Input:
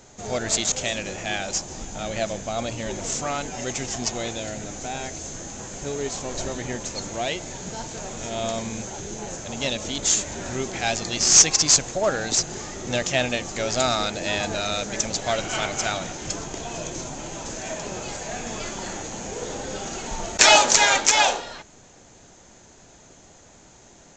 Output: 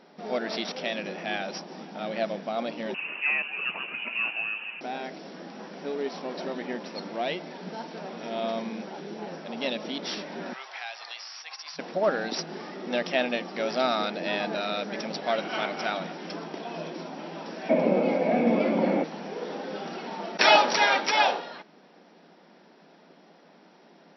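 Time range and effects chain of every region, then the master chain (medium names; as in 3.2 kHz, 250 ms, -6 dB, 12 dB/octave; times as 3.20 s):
2.94–4.81 s: high-pass 400 Hz + peaking EQ 570 Hz +10 dB 1.1 oct + frequency inversion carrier 3.2 kHz
10.53–11.79 s: high-pass 830 Hz 24 dB/octave + compression 5:1, threshold -28 dBFS
17.69–19.04 s: treble shelf 5.4 kHz -10.5 dB + small resonant body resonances 260/510/2200 Hz, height 18 dB, ringing for 25 ms
whole clip: FFT band-pass 160–5800 Hz; treble shelf 4 kHz -10.5 dB; trim -1.5 dB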